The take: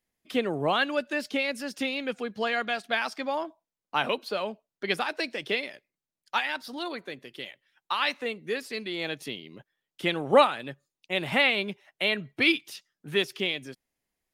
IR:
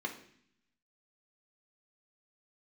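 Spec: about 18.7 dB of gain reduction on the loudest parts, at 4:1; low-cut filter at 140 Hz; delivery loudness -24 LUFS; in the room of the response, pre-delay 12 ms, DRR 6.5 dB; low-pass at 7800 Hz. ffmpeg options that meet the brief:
-filter_complex "[0:a]highpass=140,lowpass=7.8k,acompressor=threshold=-36dB:ratio=4,asplit=2[a][b];[1:a]atrim=start_sample=2205,adelay=12[c];[b][c]afir=irnorm=-1:irlink=0,volume=-9.5dB[d];[a][d]amix=inputs=2:normalize=0,volume=14.5dB"

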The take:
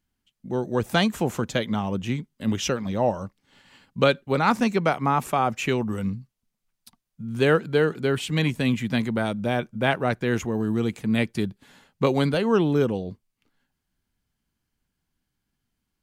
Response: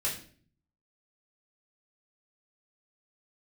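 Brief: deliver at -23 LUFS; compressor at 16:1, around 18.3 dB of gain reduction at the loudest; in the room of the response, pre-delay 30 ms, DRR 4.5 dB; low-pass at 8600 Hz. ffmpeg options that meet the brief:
-filter_complex "[0:a]lowpass=8.6k,acompressor=threshold=-33dB:ratio=16,asplit=2[a][b];[1:a]atrim=start_sample=2205,adelay=30[c];[b][c]afir=irnorm=-1:irlink=0,volume=-10dB[d];[a][d]amix=inputs=2:normalize=0,volume=14dB"

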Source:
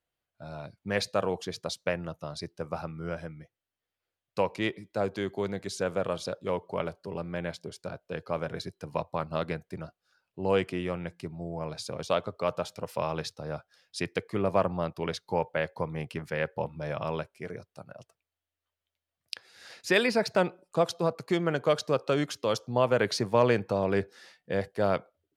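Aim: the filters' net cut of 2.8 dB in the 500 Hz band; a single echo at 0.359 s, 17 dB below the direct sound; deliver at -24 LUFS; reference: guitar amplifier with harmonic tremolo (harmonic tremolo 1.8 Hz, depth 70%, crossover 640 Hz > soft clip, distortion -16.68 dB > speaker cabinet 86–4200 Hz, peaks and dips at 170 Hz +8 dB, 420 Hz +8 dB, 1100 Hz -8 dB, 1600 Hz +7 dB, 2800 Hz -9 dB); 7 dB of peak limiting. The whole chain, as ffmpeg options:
-filter_complex "[0:a]equalizer=f=500:t=o:g=-7.5,alimiter=limit=-18dB:level=0:latency=1,aecho=1:1:359:0.141,acrossover=split=640[a][b];[a]aeval=exprs='val(0)*(1-0.7/2+0.7/2*cos(2*PI*1.8*n/s))':c=same[c];[b]aeval=exprs='val(0)*(1-0.7/2-0.7/2*cos(2*PI*1.8*n/s))':c=same[d];[c][d]amix=inputs=2:normalize=0,asoftclip=threshold=-26dB,highpass=86,equalizer=f=170:t=q:w=4:g=8,equalizer=f=420:t=q:w=4:g=8,equalizer=f=1.1k:t=q:w=4:g=-8,equalizer=f=1.6k:t=q:w=4:g=7,equalizer=f=2.8k:t=q:w=4:g=-9,lowpass=f=4.2k:w=0.5412,lowpass=f=4.2k:w=1.3066,volume=13.5dB"

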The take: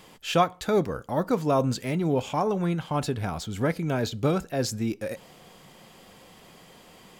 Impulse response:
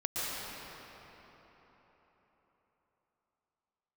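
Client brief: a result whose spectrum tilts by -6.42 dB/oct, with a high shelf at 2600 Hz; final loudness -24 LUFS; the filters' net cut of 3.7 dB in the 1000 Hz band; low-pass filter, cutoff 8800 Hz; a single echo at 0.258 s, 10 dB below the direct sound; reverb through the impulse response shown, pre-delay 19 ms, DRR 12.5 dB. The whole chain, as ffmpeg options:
-filter_complex "[0:a]lowpass=8.8k,equalizer=f=1k:t=o:g=-4,highshelf=f=2.6k:g=-8.5,aecho=1:1:258:0.316,asplit=2[a][b];[1:a]atrim=start_sample=2205,adelay=19[c];[b][c]afir=irnorm=-1:irlink=0,volume=-19.5dB[d];[a][d]amix=inputs=2:normalize=0,volume=3.5dB"

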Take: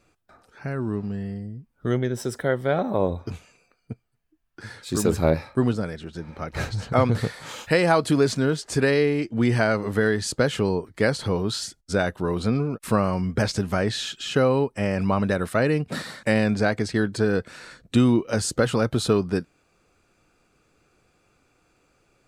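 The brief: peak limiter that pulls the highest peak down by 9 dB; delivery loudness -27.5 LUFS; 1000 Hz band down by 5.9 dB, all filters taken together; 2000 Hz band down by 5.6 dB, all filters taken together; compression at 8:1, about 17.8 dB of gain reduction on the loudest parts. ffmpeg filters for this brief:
-af "equalizer=f=1k:t=o:g=-7,equalizer=f=2k:t=o:g=-4.5,acompressor=threshold=-34dB:ratio=8,volume=13dB,alimiter=limit=-16.5dB:level=0:latency=1"

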